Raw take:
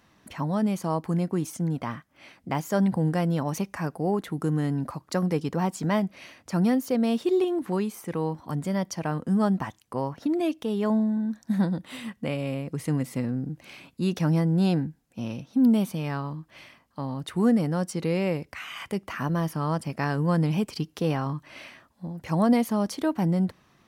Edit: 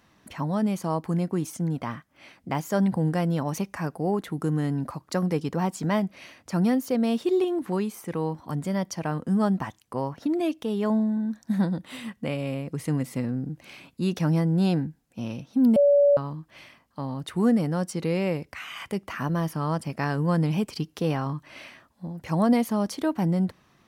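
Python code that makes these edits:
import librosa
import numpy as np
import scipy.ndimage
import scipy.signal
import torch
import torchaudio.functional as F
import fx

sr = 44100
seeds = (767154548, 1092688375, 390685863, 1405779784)

y = fx.edit(x, sr, fx.bleep(start_s=15.76, length_s=0.41, hz=572.0, db=-14.5), tone=tone)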